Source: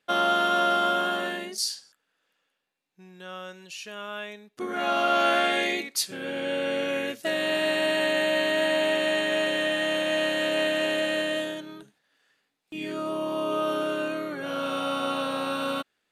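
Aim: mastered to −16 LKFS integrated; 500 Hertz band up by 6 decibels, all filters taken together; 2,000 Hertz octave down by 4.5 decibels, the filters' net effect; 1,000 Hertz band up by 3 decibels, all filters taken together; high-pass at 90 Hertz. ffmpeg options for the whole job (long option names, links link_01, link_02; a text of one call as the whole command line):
ffmpeg -i in.wav -af "highpass=90,equalizer=frequency=500:width_type=o:gain=6.5,equalizer=frequency=1000:width_type=o:gain=5.5,equalizer=frequency=2000:width_type=o:gain=-8.5,volume=7dB" out.wav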